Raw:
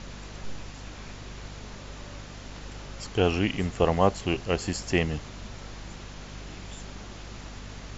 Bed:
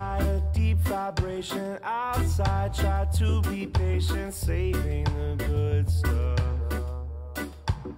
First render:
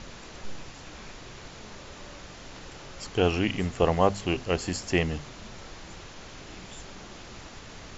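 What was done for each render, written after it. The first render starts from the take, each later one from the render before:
mains-hum notches 50/100/150/200/250 Hz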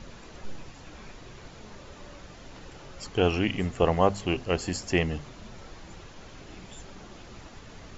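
broadband denoise 6 dB, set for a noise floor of −45 dBFS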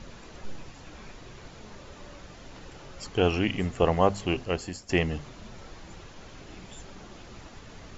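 0:04.39–0:04.89: fade out linear, to −13.5 dB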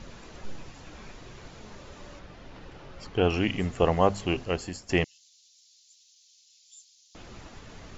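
0:02.19–0:03.30: high-frequency loss of the air 130 metres
0:05.04–0:07.15: inverse Chebyshev high-pass filter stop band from 1,300 Hz, stop band 60 dB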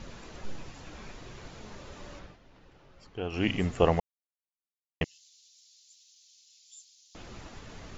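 0:02.22–0:03.47: duck −11.5 dB, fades 0.16 s
0:04.00–0:05.01: silence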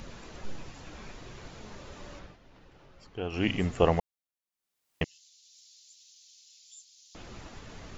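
upward compression, threshold −51 dBFS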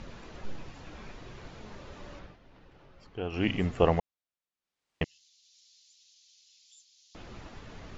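high-frequency loss of the air 90 metres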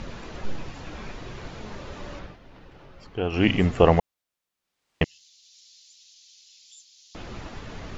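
level +8 dB
brickwall limiter −3 dBFS, peak gain reduction 2.5 dB

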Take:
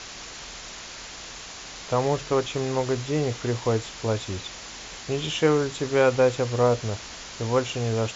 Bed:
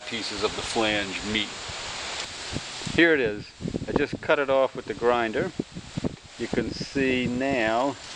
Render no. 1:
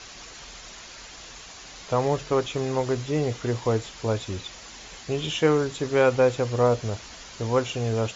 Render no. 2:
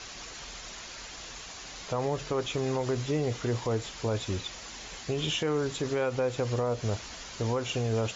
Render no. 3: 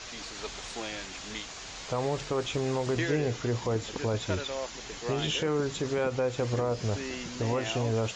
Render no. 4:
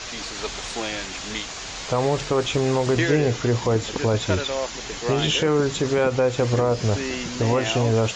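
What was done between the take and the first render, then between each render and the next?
broadband denoise 6 dB, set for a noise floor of −40 dBFS
downward compressor, threshold −22 dBFS, peak gain reduction 7 dB; brickwall limiter −20.5 dBFS, peak gain reduction 7 dB
mix in bed −14 dB
level +8.5 dB

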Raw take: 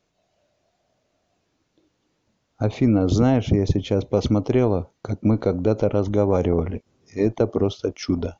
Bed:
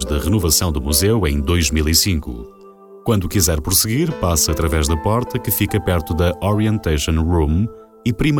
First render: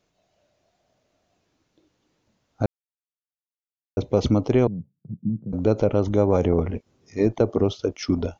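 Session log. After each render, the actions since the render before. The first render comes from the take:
0:02.66–0:03.97: silence
0:04.67–0:05.53: flat-topped band-pass 160 Hz, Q 2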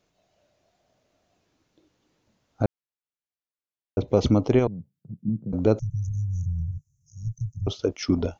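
0:02.62–0:04.08: high-frequency loss of the air 120 metres
0:04.59–0:05.28: parametric band 220 Hz −5 dB 2.8 octaves
0:05.79–0:07.67: Chebyshev band-stop filter 150–6,000 Hz, order 5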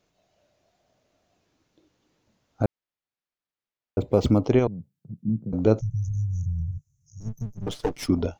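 0:02.63–0:04.46: linearly interpolated sample-rate reduction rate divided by 4×
0:05.16–0:06.32: double-tracking delay 18 ms −13 dB
0:07.20–0:08.08: lower of the sound and its delayed copy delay 6.7 ms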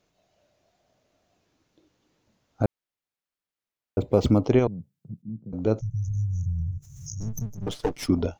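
0:05.22–0:06.14: fade in, from −13 dB
0:06.66–0:07.60: background raised ahead of every attack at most 49 dB per second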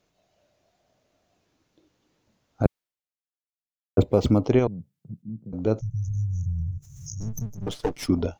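0:02.65–0:04.04: multiband upward and downward expander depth 100%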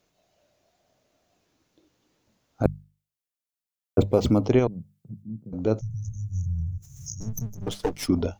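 high-shelf EQ 7,000 Hz +5.5 dB
mains-hum notches 50/100/150/200 Hz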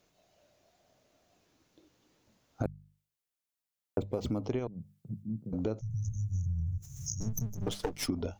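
downward compressor 10 to 1, threshold −29 dBFS, peak gain reduction 16.5 dB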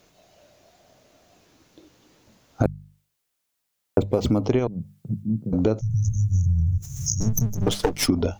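level +12 dB

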